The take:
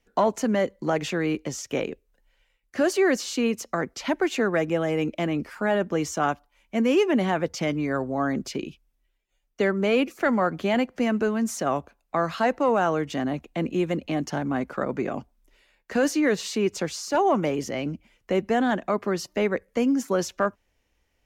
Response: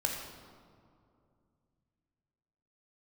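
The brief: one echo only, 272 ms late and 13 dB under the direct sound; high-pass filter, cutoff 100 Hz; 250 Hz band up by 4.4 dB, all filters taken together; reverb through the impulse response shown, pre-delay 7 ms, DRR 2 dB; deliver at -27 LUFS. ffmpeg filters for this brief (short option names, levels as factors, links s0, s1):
-filter_complex "[0:a]highpass=100,equalizer=f=250:t=o:g=5.5,aecho=1:1:272:0.224,asplit=2[s0][s1];[1:a]atrim=start_sample=2205,adelay=7[s2];[s1][s2]afir=irnorm=-1:irlink=0,volume=0.447[s3];[s0][s3]amix=inputs=2:normalize=0,volume=0.473"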